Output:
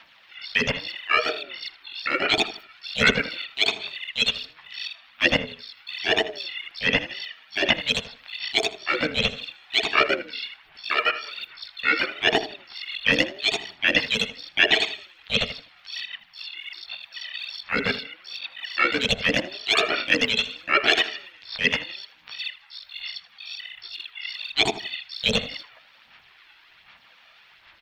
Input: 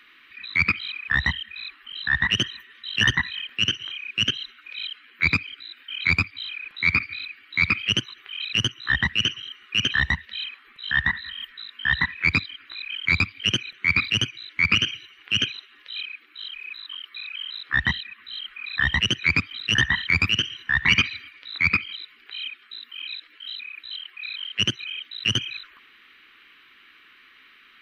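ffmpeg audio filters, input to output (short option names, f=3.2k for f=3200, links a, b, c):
-filter_complex "[0:a]bandreject=f=85.12:t=h:w=4,bandreject=f=170.24:t=h:w=4,bandreject=f=255.36:t=h:w=4,bandreject=f=340.48:t=h:w=4,bandreject=f=425.6:t=h:w=4,bandreject=f=510.72:t=h:w=4,bandreject=f=595.84:t=h:w=4,bandreject=f=680.96:t=h:w=4,bandreject=f=766.08:t=h:w=4,bandreject=f=851.2:t=h:w=4,bandreject=f=936.32:t=h:w=4,bandreject=f=1.02144k:t=h:w=4,bandreject=f=1.10656k:t=h:w=4,bandreject=f=1.19168k:t=h:w=4,bandreject=f=1.2768k:t=h:w=4,bandreject=f=1.36192k:t=h:w=4,bandreject=f=1.44704k:t=h:w=4,bandreject=f=1.53216k:t=h:w=4,bandreject=f=1.61728k:t=h:w=4,bandreject=f=1.7024k:t=h:w=4,bandreject=f=1.78752k:t=h:w=4,bandreject=f=1.87264k:t=h:w=4,aphaser=in_gain=1:out_gain=1:delay=1.7:decay=0.55:speed=1.3:type=sinusoidal,asplit=2[a][b];[b]asetrate=55563,aresample=44100,atempo=0.793701,volume=-4dB[c];[a][c]amix=inputs=2:normalize=0,asplit=2[d][e];[e]adelay=80,lowpass=f=2.6k:p=1,volume=-13.5dB,asplit=2[f][g];[g]adelay=80,lowpass=f=2.6k:p=1,volume=0.29,asplit=2[h][i];[i]adelay=80,lowpass=f=2.6k:p=1,volume=0.29[j];[f][h][j]amix=inputs=3:normalize=0[k];[d][k]amix=inputs=2:normalize=0,aeval=exprs='val(0)*sin(2*PI*440*n/s+440*0.25/0.81*sin(2*PI*0.81*n/s))':c=same,volume=-1dB"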